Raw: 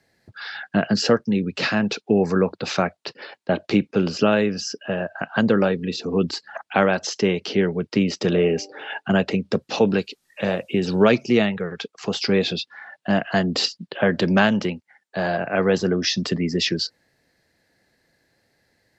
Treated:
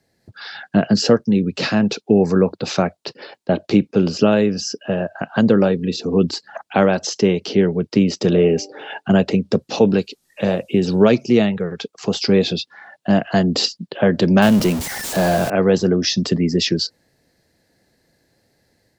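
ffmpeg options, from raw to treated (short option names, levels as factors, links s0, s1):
-filter_complex "[0:a]asettb=1/sr,asplit=3[s0][s1][s2];[s0]atrim=end=14.424[s3];[s1]atrim=start=14.42:end=15.5,asetpts=PTS-STARTPTS,afade=t=in:d=0.004:c=qsin,afade=t=out:st=1.076:d=0.004:c=qsin,aeval=exprs='val(0)+0.5*0.0708*sgn(val(0))':c=same[s4];[s2]atrim=start=15.496[s5];[s3][s4]acrossfade=d=0.004:c1=hsin:c2=qsin[s6];[s6][s5]acrossfade=d=0.004:c1=qsin:c2=hsin,equalizer=f=1800:w=0.58:g=-7.5,dynaudnorm=f=180:g=3:m=1.68,volume=1.19"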